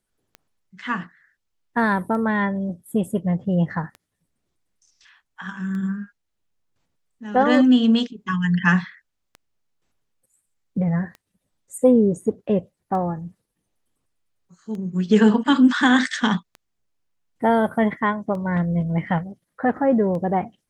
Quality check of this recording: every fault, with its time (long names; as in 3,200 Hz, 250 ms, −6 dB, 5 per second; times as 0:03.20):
scratch tick 33 1/3 rpm −24 dBFS